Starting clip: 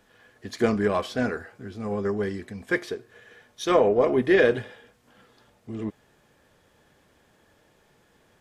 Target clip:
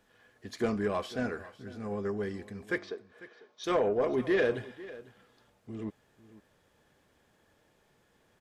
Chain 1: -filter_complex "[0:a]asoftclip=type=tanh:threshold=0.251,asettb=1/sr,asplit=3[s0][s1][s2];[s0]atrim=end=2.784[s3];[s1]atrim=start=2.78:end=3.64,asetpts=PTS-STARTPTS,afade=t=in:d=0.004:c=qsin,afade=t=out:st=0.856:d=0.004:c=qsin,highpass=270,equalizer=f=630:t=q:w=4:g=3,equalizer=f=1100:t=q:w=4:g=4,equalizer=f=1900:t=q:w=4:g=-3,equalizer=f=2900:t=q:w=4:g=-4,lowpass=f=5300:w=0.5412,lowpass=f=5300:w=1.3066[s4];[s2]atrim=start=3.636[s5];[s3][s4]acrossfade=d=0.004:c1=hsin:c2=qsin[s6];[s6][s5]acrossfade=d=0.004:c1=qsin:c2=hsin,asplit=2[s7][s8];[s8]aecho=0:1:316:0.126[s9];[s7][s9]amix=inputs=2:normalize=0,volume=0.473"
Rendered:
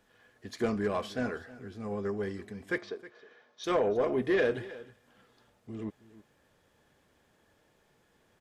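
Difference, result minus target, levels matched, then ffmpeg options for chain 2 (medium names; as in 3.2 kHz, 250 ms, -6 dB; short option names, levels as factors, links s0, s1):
echo 182 ms early
-filter_complex "[0:a]asoftclip=type=tanh:threshold=0.251,asettb=1/sr,asplit=3[s0][s1][s2];[s0]atrim=end=2.784[s3];[s1]atrim=start=2.78:end=3.64,asetpts=PTS-STARTPTS,afade=t=in:d=0.004:c=qsin,afade=t=out:st=0.856:d=0.004:c=qsin,highpass=270,equalizer=f=630:t=q:w=4:g=3,equalizer=f=1100:t=q:w=4:g=4,equalizer=f=1900:t=q:w=4:g=-3,equalizer=f=2900:t=q:w=4:g=-4,lowpass=f=5300:w=0.5412,lowpass=f=5300:w=1.3066[s4];[s2]atrim=start=3.636[s5];[s3][s4]acrossfade=d=0.004:c1=hsin:c2=qsin[s6];[s6][s5]acrossfade=d=0.004:c1=qsin:c2=hsin,asplit=2[s7][s8];[s8]aecho=0:1:498:0.126[s9];[s7][s9]amix=inputs=2:normalize=0,volume=0.473"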